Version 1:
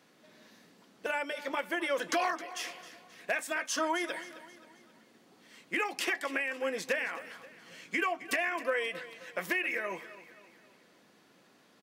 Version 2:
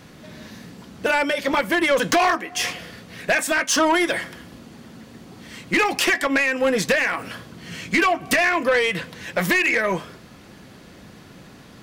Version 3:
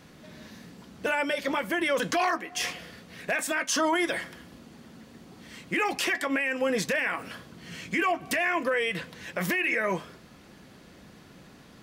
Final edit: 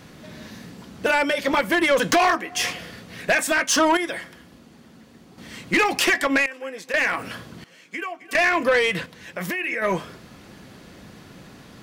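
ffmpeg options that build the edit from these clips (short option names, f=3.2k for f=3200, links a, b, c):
-filter_complex "[2:a]asplit=2[a][b];[0:a]asplit=2[c][d];[1:a]asplit=5[e][f][g][h][i];[e]atrim=end=3.972[j];[a]atrim=start=3.968:end=5.382[k];[f]atrim=start=5.378:end=6.462[l];[c]atrim=start=6.458:end=6.942[m];[g]atrim=start=6.938:end=7.642[n];[d]atrim=start=7.638:end=8.352[o];[h]atrim=start=8.348:end=9.062[p];[b]atrim=start=9.058:end=9.822[q];[i]atrim=start=9.818[r];[j][k]acrossfade=d=0.004:c1=hsin:c2=hsin[s];[s][l]acrossfade=d=0.004:c1=hsin:c2=hsin[t];[t][m]acrossfade=d=0.004:c1=hsin:c2=hsin[u];[u][n]acrossfade=d=0.004:c1=hsin:c2=hsin[v];[v][o]acrossfade=d=0.004:c1=hsin:c2=hsin[w];[w][p]acrossfade=d=0.004:c1=hsin:c2=hsin[x];[x][q]acrossfade=d=0.004:c1=hsin:c2=hsin[y];[y][r]acrossfade=d=0.004:c1=hsin:c2=hsin"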